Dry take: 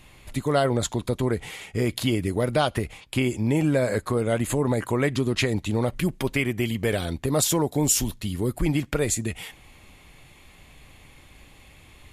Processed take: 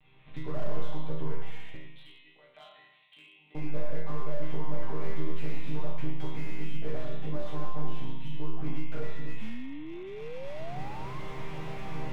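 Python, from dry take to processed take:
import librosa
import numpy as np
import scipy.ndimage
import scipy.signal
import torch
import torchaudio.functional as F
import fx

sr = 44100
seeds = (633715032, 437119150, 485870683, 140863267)

y = fx.lower_of_two(x, sr, delay_ms=3.8, at=(7.45, 7.86))
y = fx.recorder_agc(y, sr, target_db=-15.0, rise_db_per_s=14.0, max_gain_db=30)
y = fx.dynamic_eq(y, sr, hz=820.0, q=1.0, threshold_db=-38.0, ratio=4.0, max_db=6)
y = fx.lpc_monotone(y, sr, seeds[0], pitch_hz=150.0, order=10)
y = fx.differentiator(y, sr, at=(1.76, 3.55))
y = fx.resonator_bank(y, sr, root=48, chord='minor', decay_s=0.84)
y = fx.echo_feedback(y, sr, ms=108, feedback_pct=50, wet_db=-11)
y = fx.spec_paint(y, sr, seeds[1], shape='rise', start_s=9.41, length_s=1.79, low_hz=210.0, high_hz=1100.0, level_db=-49.0)
y = fx.slew_limit(y, sr, full_power_hz=3.8)
y = y * 10.0 ** (8.0 / 20.0)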